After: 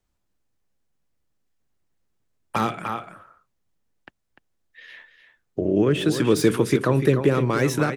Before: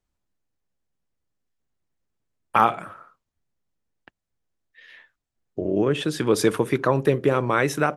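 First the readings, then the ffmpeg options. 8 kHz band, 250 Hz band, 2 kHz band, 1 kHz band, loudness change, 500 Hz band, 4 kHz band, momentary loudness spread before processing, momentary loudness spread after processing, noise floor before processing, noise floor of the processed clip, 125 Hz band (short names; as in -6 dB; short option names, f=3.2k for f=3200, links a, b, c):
+1.0 dB, +3.5 dB, -1.5 dB, -5.0 dB, +0.5 dB, +0.5 dB, +1.0 dB, 7 LU, 11 LU, -82 dBFS, -74 dBFS, +4.5 dB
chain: -filter_complex "[0:a]aecho=1:1:297:0.299,acrossover=split=430|1400[a][b][c];[b]acompressor=threshold=-34dB:ratio=6[d];[c]asoftclip=type=tanh:threshold=-29.5dB[e];[a][d][e]amix=inputs=3:normalize=0,volume=4dB"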